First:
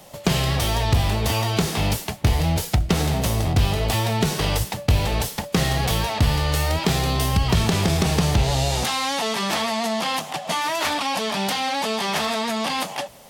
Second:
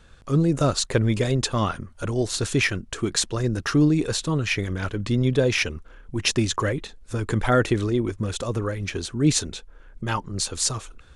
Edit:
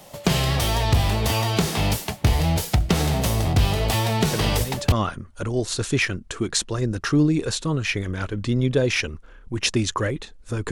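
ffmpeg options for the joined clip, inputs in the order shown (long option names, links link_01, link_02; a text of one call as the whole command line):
ffmpeg -i cue0.wav -i cue1.wav -filter_complex "[1:a]asplit=2[link_01][link_02];[0:a]apad=whole_dur=10.71,atrim=end=10.71,atrim=end=4.922[link_03];[link_02]atrim=start=1.538:end=7.33[link_04];[link_01]atrim=start=0.95:end=1.54,asetpts=PTS-STARTPTS,volume=-8dB,afade=type=in:duration=0.004:curve=hsin,afade=type=out:start_time=0.586:duration=0.004:curve=hsin,adelay=190953S[link_05];[link_03][link_04]acrossfade=duration=0.004:curve1=hsin:curve2=hsin[link_06];[link_06][link_05]amix=inputs=2:normalize=0" out.wav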